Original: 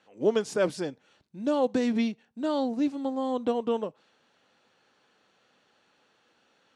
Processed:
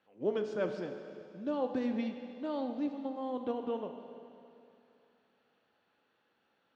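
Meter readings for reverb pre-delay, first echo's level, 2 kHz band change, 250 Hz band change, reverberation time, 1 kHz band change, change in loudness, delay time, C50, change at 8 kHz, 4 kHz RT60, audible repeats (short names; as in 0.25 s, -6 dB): 12 ms, none, -8.5 dB, -7.5 dB, 2.7 s, -7.5 dB, -8.0 dB, none, 6.5 dB, n/a, 2.6 s, none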